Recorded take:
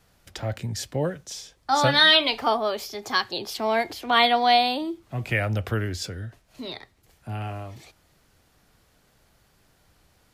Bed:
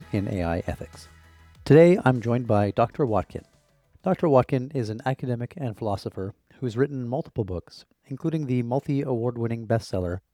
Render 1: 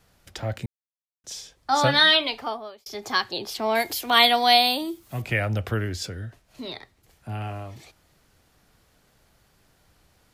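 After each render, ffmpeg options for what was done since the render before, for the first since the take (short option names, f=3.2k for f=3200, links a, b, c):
-filter_complex "[0:a]asettb=1/sr,asplit=3[a][b][c];[a]atrim=end=3.754[d];[b]atrim=start=3.75:end=5.22,asetpts=PTS-STARTPTS,afade=t=in:d=0.004:c=qsin,afade=t=out:st=1.466:d=0.004:c=qsin,aemphasis=mode=production:type=75fm[e];[c]atrim=start=5.216[f];[d][e]acrossfade=d=0.004:c1=hsin:c2=qsin[g];[g][f]acrossfade=d=0.004:c1=qsin:c2=hsin,asplit=4[h][i][j][k];[h]atrim=end=0.66,asetpts=PTS-STARTPTS,afade=t=out:st=0.656:d=0.004:c=hsin[l];[i]atrim=start=0.66:end=1.24,asetpts=PTS-STARTPTS,volume=0[m];[j]atrim=start=1.24:end=2.86,asetpts=PTS-STARTPTS,afade=t=in:d=0.004:c=hsin,afade=t=out:st=0.75:d=0.87[n];[k]atrim=start=2.86,asetpts=PTS-STARTPTS,afade=t=in:d=0.004:c=hsin[o];[l][m][n][o]concat=n=4:v=0:a=1"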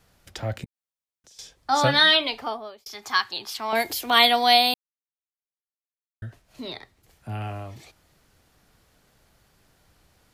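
-filter_complex "[0:a]asettb=1/sr,asplit=3[a][b][c];[a]atrim=end=0.644[d];[b]atrim=start=0.64:end=1.39,asetpts=PTS-STARTPTS,afade=t=in:d=0.004:c=qsin,afade=t=out:st=0.746:d=0.004:c=qsin,acompressor=threshold=-52dB:ratio=6:attack=3.2:release=140:knee=1:detection=peak[e];[c]atrim=start=1.386[f];[d][e]acrossfade=d=0.004:c1=hsin:c2=qsin[g];[g][f]acrossfade=d=0.004:c1=qsin:c2=hsin,asettb=1/sr,asplit=3[h][i][j];[h]atrim=end=2.884[k];[i]atrim=start=2.88:end=3.73,asetpts=PTS-STARTPTS,afade=t=in:d=0.004:c=qsin,afade=t=out:st=0.846:d=0.004:c=qsin,lowshelf=f=770:t=q:w=1.5:g=-9[l];[j]atrim=start=3.726[m];[k][l]acrossfade=d=0.004:c1=hsin:c2=qsin[n];[n][m]acrossfade=d=0.004:c1=qsin:c2=hsin,asplit=3[o][p][q];[o]atrim=end=4.74,asetpts=PTS-STARTPTS,afade=t=out:st=4.736:d=0.004:c=hsin[r];[p]atrim=start=4.74:end=6.22,asetpts=PTS-STARTPTS,volume=0[s];[q]atrim=start=6.22,asetpts=PTS-STARTPTS,afade=t=in:d=0.004:c=hsin[t];[r][s][t]concat=n=3:v=0:a=1"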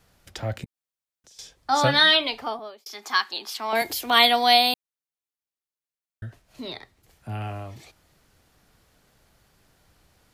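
-filter_complex "[0:a]asettb=1/sr,asplit=3[a][b][c];[a]atrim=end=2.594[d];[b]atrim=start=2.59:end=3.82,asetpts=PTS-STARTPTS,afade=t=in:d=0.004:c=qsin,afade=t=out:st=1.226:d=0.004:c=qsin,highpass=f=200:w=0.5412,highpass=f=200:w=1.3066[e];[c]atrim=start=3.816[f];[d][e]acrossfade=d=0.004:c1=hsin:c2=qsin[g];[g][f]acrossfade=d=0.004:c1=qsin:c2=hsin"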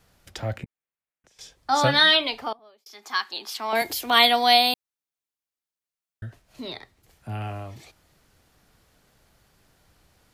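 -filter_complex "[0:a]asettb=1/sr,asplit=3[a][b][c];[a]atrim=end=0.574[d];[b]atrim=start=0.57:end=1.41,asetpts=PTS-STARTPTS,afade=t=in:d=0.004:c=qsin,afade=t=out:st=0.836:d=0.004:c=qsin,highshelf=f=3.1k:t=q:w=1.5:g=-9[e];[c]atrim=start=1.406[f];[d][e]acrossfade=d=0.004:c1=hsin:c2=qsin[g];[g][f]acrossfade=d=0.004:c1=qsin:c2=hsin,asplit=2[h][i];[h]atrim=end=2.53,asetpts=PTS-STARTPTS,afade=t=out:st=2.526:d=0.004:c=hsin:silence=0.0749894[j];[i]atrim=start=2.53,asetpts=PTS-STARTPTS,afade=t=in:d=1:silence=0.0749894[k];[j][k]concat=n=2:v=0:a=1"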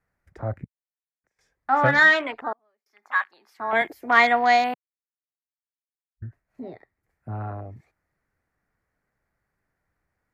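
-af "highshelf=f=2.5k:t=q:w=3:g=-8.5,afwtdn=0.0224"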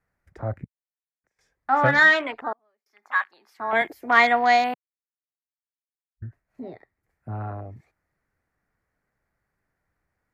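-af anull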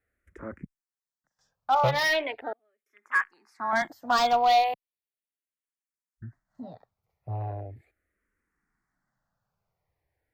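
-filter_complex "[0:a]asoftclip=type=hard:threshold=-15.5dB,asplit=2[a][b];[b]afreqshift=-0.38[c];[a][c]amix=inputs=2:normalize=1"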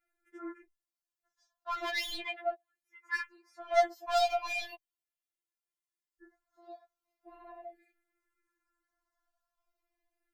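-af "asoftclip=type=tanh:threshold=-19dB,afftfilt=real='re*4*eq(mod(b,16),0)':imag='im*4*eq(mod(b,16),0)':win_size=2048:overlap=0.75"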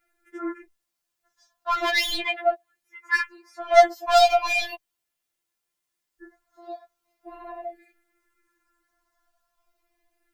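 -af "volume=11.5dB"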